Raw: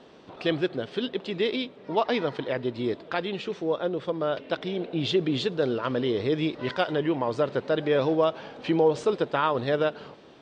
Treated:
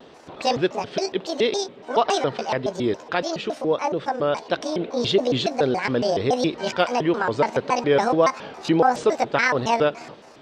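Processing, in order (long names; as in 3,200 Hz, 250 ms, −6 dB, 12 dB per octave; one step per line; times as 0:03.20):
pitch shifter gated in a rhythm +8 semitones, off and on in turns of 140 ms
pitch vibrato 1.6 Hz 60 cents
level +5 dB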